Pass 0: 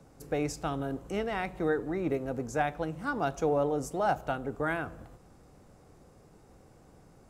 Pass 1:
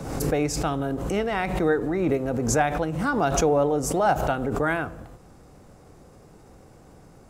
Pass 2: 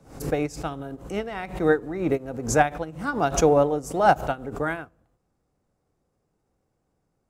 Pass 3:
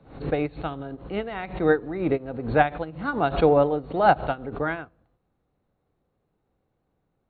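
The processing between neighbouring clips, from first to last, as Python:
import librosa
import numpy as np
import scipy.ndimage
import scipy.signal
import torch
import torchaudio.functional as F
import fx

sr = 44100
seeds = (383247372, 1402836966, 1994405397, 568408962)

y1 = fx.pre_swell(x, sr, db_per_s=45.0)
y1 = y1 * librosa.db_to_amplitude(6.5)
y2 = fx.upward_expand(y1, sr, threshold_db=-37.0, expansion=2.5)
y2 = y2 * librosa.db_to_amplitude(5.0)
y3 = fx.brickwall_lowpass(y2, sr, high_hz=4400.0)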